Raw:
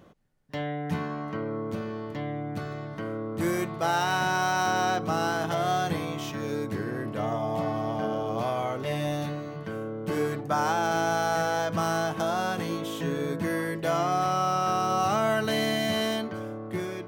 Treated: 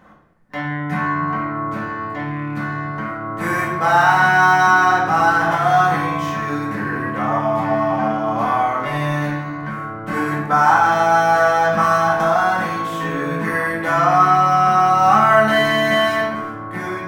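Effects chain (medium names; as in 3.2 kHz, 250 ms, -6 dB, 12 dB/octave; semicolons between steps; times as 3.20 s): rattle on loud lows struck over -32 dBFS, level -37 dBFS; high-order bell 1.3 kHz +10.5 dB; simulated room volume 340 m³, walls mixed, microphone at 2 m; trim -1.5 dB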